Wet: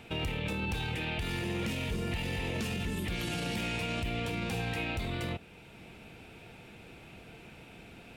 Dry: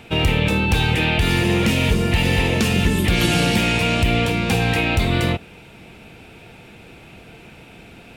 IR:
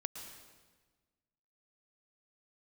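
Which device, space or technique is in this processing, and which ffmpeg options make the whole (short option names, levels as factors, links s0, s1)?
stacked limiters: -af "alimiter=limit=0.282:level=0:latency=1:release=84,alimiter=limit=0.178:level=0:latency=1:release=467,alimiter=limit=0.126:level=0:latency=1:release=26,volume=0.398"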